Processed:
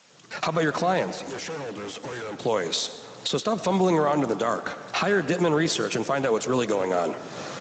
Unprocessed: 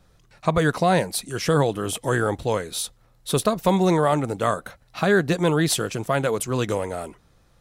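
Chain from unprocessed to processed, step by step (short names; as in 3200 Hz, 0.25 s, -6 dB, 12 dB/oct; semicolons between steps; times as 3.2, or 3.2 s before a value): recorder AGC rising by 59 dB/s; Bessel high-pass 230 Hz, order 6; 5.05–5.7 notch 3900 Hz, Q 11; limiter -13.5 dBFS, peak gain reduction 10 dB; added noise white -53 dBFS; 1.12–2.37 overloaded stage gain 32.5 dB; on a send: frequency-shifting echo 0.122 s, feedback 61%, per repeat +75 Hz, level -22 dB; on the sum: digital reverb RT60 2.4 s, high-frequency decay 0.45×, pre-delay 60 ms, DRR 13 dB; Speex 17 kbps 16000 Hz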